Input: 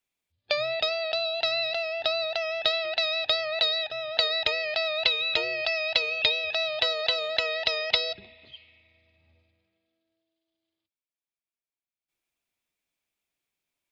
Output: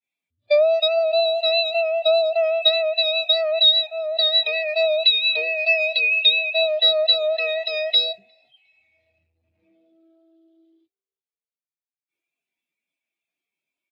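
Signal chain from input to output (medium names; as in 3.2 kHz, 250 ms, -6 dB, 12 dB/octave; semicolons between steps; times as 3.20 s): jump at every zero crossing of -24.5 dBFS; high-pass 120 Hz; expander -25 dBFS; on a send: frequency-shifting echo 356 ms, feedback 52%, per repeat +62 Hz, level -17.5 dB; on the sum: spectral contrast expander 2.5:1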